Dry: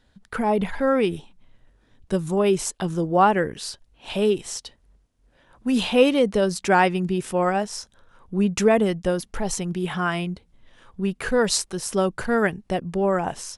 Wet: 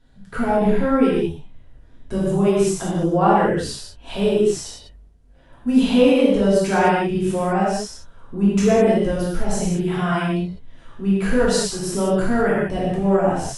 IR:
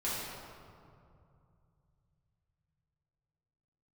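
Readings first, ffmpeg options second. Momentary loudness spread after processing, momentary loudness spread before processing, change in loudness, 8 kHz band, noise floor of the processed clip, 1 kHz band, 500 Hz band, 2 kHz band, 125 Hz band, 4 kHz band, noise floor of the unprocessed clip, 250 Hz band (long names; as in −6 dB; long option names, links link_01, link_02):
12 LU, 13 LU, +3.5 dB, 0.0 dB, −47 dBFS, +1.5 dB, +3.5 dB, +0.5 dB, +5.5 dB, 0.0 dB, −62 dBFS, +5.5 dB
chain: -filter_complex "[0:a]lowshelf=frequency=410:gain=6.5,asplit=2[link_01][link_02];[link_02]acompressor=threshold=-23dB:ratio=6,volume=-1dB[link_03];[link_01][link_03]amix=inputs=2:normalize=0[link_04];[1:a]atrim=start_sample=2205,atrim=end_sample=6615,asetrate=29988,aresample=44100[link_05];[link_04][link_05]afir=irnorm=-1:irlink=0,volume=-9.5dB"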